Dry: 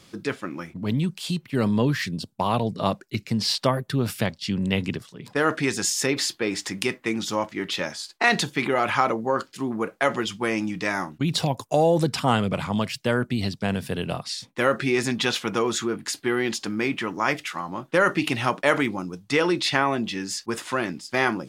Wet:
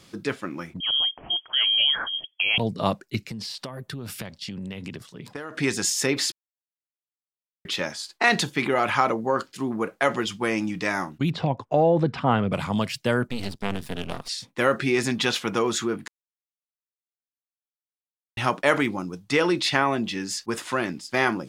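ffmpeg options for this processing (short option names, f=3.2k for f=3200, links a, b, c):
-filter_complex "[0:a]asettb=1/sr,asplit=3[a][b][c];[a]atrim=end=0.804[d];[b]atrim=start=0.8:end=2.58,asetpts=PTS-STARTPTS,afade=t=in:d=0.004:c=qsin,afade=t=out:st=1.776:d=0.004:c=qsin,lowpass=f=2.9k:t=q:w=0.5098,lowpass=f=2.9k:t=q:w=0.6013,lowpass=f=2.9k:t=q:w=0.9,lowpass=f=2.9k:t=q:w=2.563,afreqshift=-3400[e];[c]atrim=start=2.576[f];[d][e]acrossfade=d=0.004:c1=hsin:c2=qsin[g];[g][f]acrossfade=d=0.004:c1=qsin:c2=hsin,asettb=1/sr,asplit=3[h][i][j];[h]atrim=end=3.274[k];[i]atrim=start=3.27:end=5.57,asetpts=PTS-STARTPTS,afade=t=in:d=0.004:c=qsin,afade=t=out:st=2.296:d=0.004:c=qsin,acompressor=threshold=-30dB:ratio=20:attack=3.2:release=140:knee=1:detection=peak[l];[j]atrim=start=5.566[m];[k][l]acrossfade=d=0.004:c1=hsin:c2=qsin[n];[n][m]acrossfade=d=0.004:c1=qsin:c2=hsin,asettb=1/sr,asplit=3[o][p][q];[o]atrim=end=11.304[r];[p]atrim=start=11.3:end=12.52,asetpts=PTS-STARTPTS,afade=t=in:d=0.004:c=qsin,afade=t=out:st=1.216:d=0.004:c=qsin,lowpass=2.2k[s];[q]atrim=start=12.516[t];[r][s]acrossfade=d=0.004:c1=hsin:c2=qsin[u];[u][t]acrossfade=d=0.004:c1=qsin:c2=hsin,asplit=3[v][w][x];[v]afade=t=out:st=13.27:d=0.02[y];[w]aeval=exprs='max(val(0),0)':c=same,afade=t=in:st=13.27:d=0.02,afade=t=out:st=14.27:d=0.02[z];[x]afade=t=in:st=14.27:d=0.02[aa];[y][z][aa]amix=inputs=3:normalize=0,asplit=5[ab][ac][ad][ae][af];[ab]atrim=end=6.32,asetpts=PTS-STARTPTS,afade=t=out:st=6.316:d=0.004:c=hsin[ag];[ac]atrim=start=6.32:end=7.65,asetpts=PTS-STARTPTS,volume=0[ah];[ad]atrim=start=7.65:end=16.08,asetpts=PTS-STARTPTS,afade=t=in:d=0.004:c=hsin,afade=t=out:st=8.426:d=0.004:c=hsin[ai];[ae]atrim=start=16.08:end=18.37,asetpts=PTS-STARTPTS,volume=0[aj];[af]atrim=start=18.37,asetpts=PTS-STARTPTS,afade=t=in:d=0.004:c=hsin[ak];[ag][ah][ai][aj][ak]concat=n=5:v=0:a=1"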